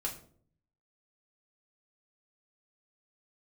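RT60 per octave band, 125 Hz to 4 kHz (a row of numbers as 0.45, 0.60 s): 1.0, 0.75, 0.65, 0.45, 0.35, 0.35 s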